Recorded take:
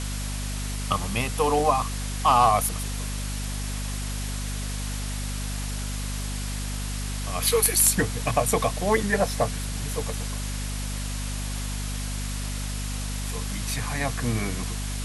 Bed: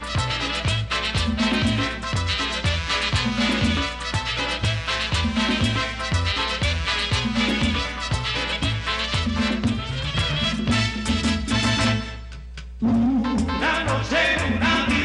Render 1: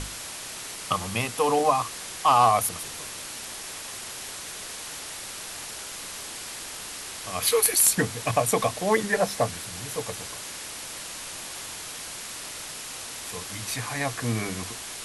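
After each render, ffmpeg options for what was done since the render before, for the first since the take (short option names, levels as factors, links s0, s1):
-af "bandreject=f=50:t=h:w=6,bandreject=f=100:t=h:w=6,bandreject=f=150:t=h:w=6,bandreject=f=200:t=h:w=6,bandreject=f=250:t=h:w=6"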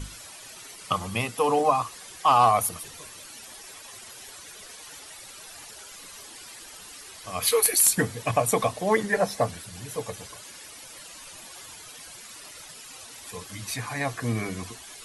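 -af "afftdn=nr=12:nf=-38"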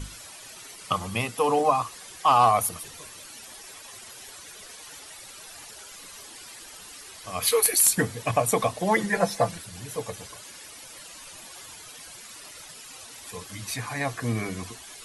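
-filter_complex "[0:a]asettb=1/sr,asplit=3[s0][s1][s2];[s0]atrim=end=8.804[s3];[s1]atrim=start=8.8:end=9.58,asetpts=PTS-STARTPTS,afade=t=in:d=0.004:c=qsin,afade=t=out:st=0.776:d=0.004:c=qsin,aecho=1:1:5.9:0.65,atrim=end_sample=34398[s4];[s2]atrim=start=9.576[s5];[s3][s4]acrossfade=d=0.004:c1=hsin:c2=qsin[s6];[s6][s5]acrossfade=d=0.004:c1=qsin:c2=hsin"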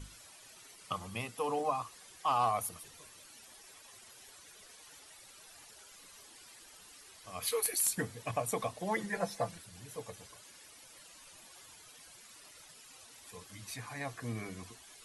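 -af "volume=0.266"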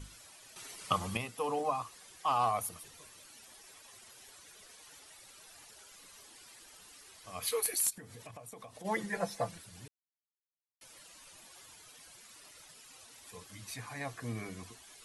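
-filter_complex "[0:a]asplit=3[s0][s1][s2];[s0]afade=t=out:st=7.89:d=0.02[s3];[s1]acompressor=threshold=0.00562:ratio=12:attack=3.2:release=140:knee=1:detection=peak,afade=t=in:st=7.89:d=0.02,afade=t=out:st=8.84:d=0.02[s4];[s2]afade=t=in:st=8.84:d=0.02[s5];[s3][s4][s5]amix=inputs=3:normalize=0,asplit=5[s6][s7][s8][s9][s10];[s6]atrim=end=0.562[s11];[s7]atrim=start=0.558:end=1.172,asetpts=PTS-STARTPTS,volume=2.24[s12];[s8]atrim=start=1.168:end=9.88,asetpts=PTS-STARTPTS,afade=t=out:st=8.708:d=0.004:c=hsin[s13];[s9]atrim=start=9.88:end=10.81,asetpts=PTS-STARTPTS,volume=0[s14];[s10]atrim=start=10.81,asetpts=PTS-STARTPTS,afade=t=in:d=0.004:c=hsin[s15];[s11][s12]acrossfade=d=0.004:c1=hsin:c2=hsin[s16];[s13][s14][s15]concat=n=3:v=0:a=1[s17];[s16][s17]acrossfade=d=0.004:c1=hsin:c2=hsin"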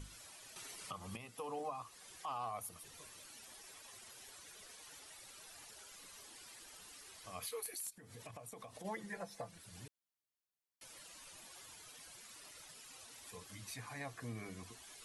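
-af "acompressor=threshold=0.00251:ratio=1.5,alimiter=level_in=2.99:limit=0.0631:level=0:latency=1:release=253,volume=0.335"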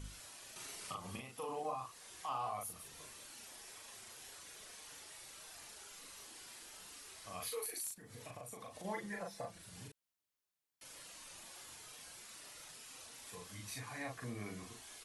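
-filter_complex "[0:a]asplit=2[s0][s1];[s1]adelay=39,volume=0.75[s2];[s0][s2]amix=inputs=2:normalize=0"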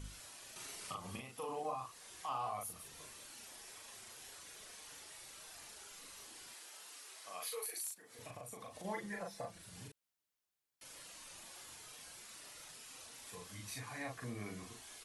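-filter_complex "[0:a]asettb=1/sr,asplit=3[s0][s1][s2];[s0]atrim=end=6.544[s3];[s1]atrim=start=6.54:end=8.19,asetpts=PTS-STARTPTS,afade=t=in:d=0.004:c=qsin,afade=t=out:st=1.646:d=0.004:c=qsin,highpass=420[s4];[s2]atrim=start=8.186[s5];[s3][s4]acrossfade=d=0.004:c1=hsin:c2=qsin[s6];[s6][s5]acrossfade=d=0.004:c1=qsin:c2=hsin"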